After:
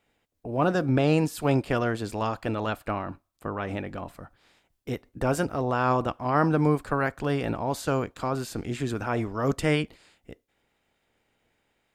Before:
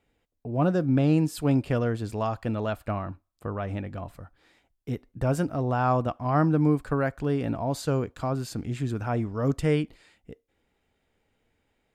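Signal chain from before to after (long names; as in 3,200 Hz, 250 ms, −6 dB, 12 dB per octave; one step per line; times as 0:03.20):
ceiling on every frequency bin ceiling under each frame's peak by 12 dB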